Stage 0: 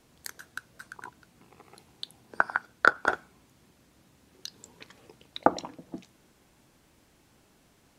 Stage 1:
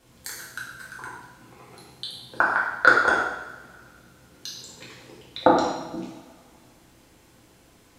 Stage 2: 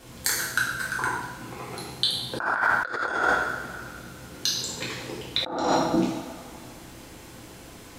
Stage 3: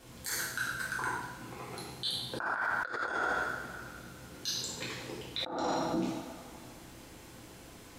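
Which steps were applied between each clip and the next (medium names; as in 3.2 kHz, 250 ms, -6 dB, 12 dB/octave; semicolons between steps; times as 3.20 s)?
two-slope reverb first 0.89 s, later 2.6 s, from -21 dB, DRR -6 dB
compressor with a negative ratio -30 dBFS, ratio -1; trim +5 dB
peak limiter -16.5 dBFS, peak gain reduction 10.5 dB; trim -6.5 dB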